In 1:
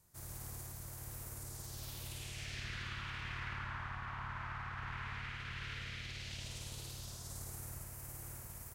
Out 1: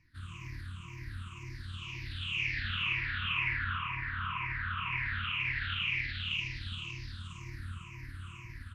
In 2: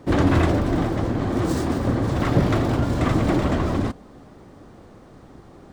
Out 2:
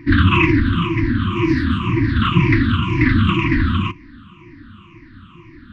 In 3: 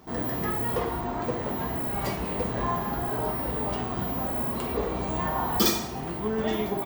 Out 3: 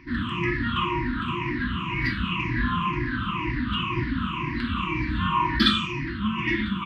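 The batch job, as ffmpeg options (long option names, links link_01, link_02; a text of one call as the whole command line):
ffmpeg -i in.wav -af "afftfilt=real='re*pow(10,19/40*sin(2*PI*(0.74*log(max(b,1)*sr/1024/100)/log(2)-(-2)*(pts-256)/sr)))':imag='im*pow(10,19/40*sin(2*PI*(0.74*log(max(b,1)*sr/1024/100)/log(2)-(-2)*(pts-256)/sr)))':win_size=1024:overlap=0.75,lowpass=frequency=2700:width_type=q:width=4,equalizer=frequency=97:width=7.8:gain=6,afftfilt=real='re*(1-between(b*sr/4096,360,940))':imag='im*(1-between(b*sr/4096,360,940))':win_size=4096:overlap=0.75,volume=1dB" out.wav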